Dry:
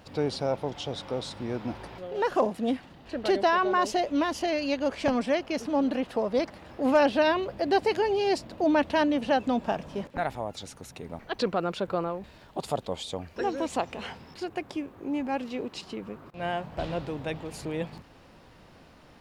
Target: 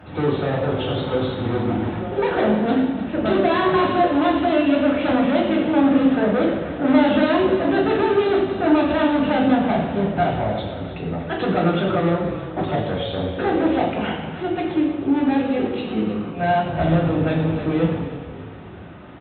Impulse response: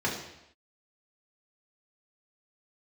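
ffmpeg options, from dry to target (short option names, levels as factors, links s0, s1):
-filter_complex "[0:a]aresample=8000,volume=26.6,asoftclip=hard,volume=0.0376,aresample=44100,asplit=6[s0][s1][s2][s3][s4][s5];[s1]adelay=306,afreqshift=-31,volume=0.224[s6];[s2]adelay=612,afreqshift=-62,volume=0.11[s7];[s3]adelay=918,afreqshift=-93,volume=0.0537[s8];[s4]adelay=1224,afreqshift=-124,volume=0.0263[s9];[s5]adelay=1530,afreqshift=-155,volume=0.0129[s10];[s0][s6][s7][s8][s9][s10]amix=inputs=6:normalize=0[s11];[1:a]atrim=start_sample=2205,asetrate=34398,aresample=44100[s12];[s11][s12]afir=irnorm=-1:irlink=0"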